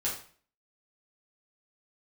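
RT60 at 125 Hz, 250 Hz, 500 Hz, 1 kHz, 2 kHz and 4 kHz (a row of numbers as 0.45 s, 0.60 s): 0.50 s, 0.50 s, 0.45 s, 0.45 s, 0.45 s, 0.40 s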